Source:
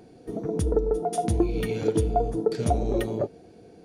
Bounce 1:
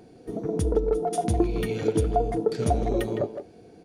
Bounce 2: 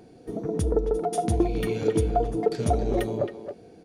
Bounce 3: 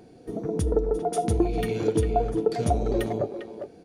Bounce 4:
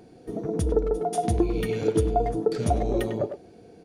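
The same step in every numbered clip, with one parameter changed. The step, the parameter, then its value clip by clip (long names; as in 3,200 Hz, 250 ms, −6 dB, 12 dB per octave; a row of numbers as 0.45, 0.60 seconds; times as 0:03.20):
far-end echo of a speakerphone, delay time: 160, 270, 400, 100 milliseconds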